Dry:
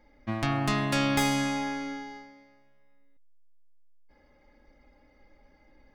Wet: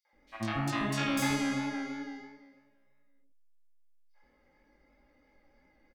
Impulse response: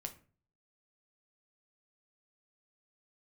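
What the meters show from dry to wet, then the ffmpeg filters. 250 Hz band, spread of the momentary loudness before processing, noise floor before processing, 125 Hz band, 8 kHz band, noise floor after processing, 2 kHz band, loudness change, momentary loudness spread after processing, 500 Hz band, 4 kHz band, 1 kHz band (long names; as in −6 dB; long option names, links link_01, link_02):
−3.0 dB, 15 LU, −62 dBFS, −5.5 dB, −3.5 dB, −69 dBFS, −3.5 dB, −4.0 dB, 14 LU, −6.0 dB, −5.0 dB, −5.5 dB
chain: -filter_complex "[0:a]lowshelf=frequency=120:gain=-6.5,flanger=delay=17.5:depth=5.1:speed=3,acrossover=split=660|4000[link_01][link_02][link_03];[link_02]adelay=50[link_04];[link_01]adelay=130[link_05];[link_05][link_04][link_03]amix=inputs=3:normalize=0"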